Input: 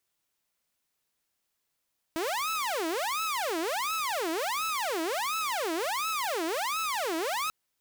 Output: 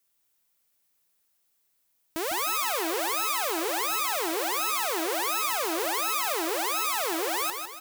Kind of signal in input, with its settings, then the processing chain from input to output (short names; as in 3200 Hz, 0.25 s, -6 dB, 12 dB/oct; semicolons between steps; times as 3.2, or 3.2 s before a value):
siren wail 319–1310 Hz 1.4/s saw -26 dBFS 5.34 s
high shelf 9100 Hz +10.5 dB; on a send: feedback echo 0.154 s, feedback 46%, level -6.5 dB